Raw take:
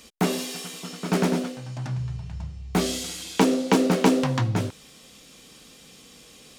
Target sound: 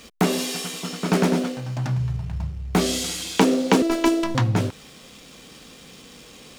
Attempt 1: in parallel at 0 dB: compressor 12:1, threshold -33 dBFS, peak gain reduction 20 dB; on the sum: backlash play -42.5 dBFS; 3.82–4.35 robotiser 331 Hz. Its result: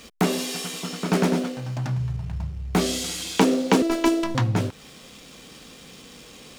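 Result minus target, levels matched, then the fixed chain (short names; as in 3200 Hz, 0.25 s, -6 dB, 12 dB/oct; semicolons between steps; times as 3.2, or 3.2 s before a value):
compressor: peak gain reduction +6.5 dB
in parallel at 0 dB: compressor 12:1, threshold -26 dBFS, peak gain reduction 14 dB; on the sum: backlash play -42.5 dBFS; 3.82–4.35 robotiser 331 Hz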